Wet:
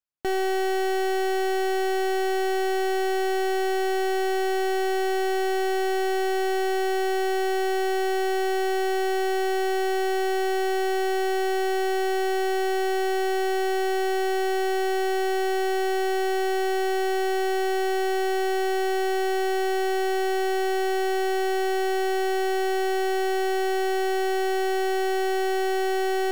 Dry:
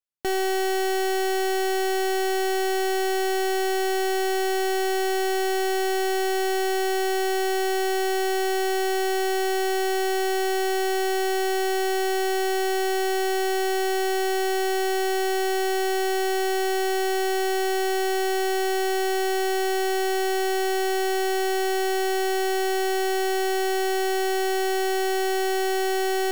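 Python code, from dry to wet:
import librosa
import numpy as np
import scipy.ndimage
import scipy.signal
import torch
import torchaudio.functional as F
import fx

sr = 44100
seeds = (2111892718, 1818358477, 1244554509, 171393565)

y = fx.high_shelf(x, sr, hz=3900.0, db=-8.5)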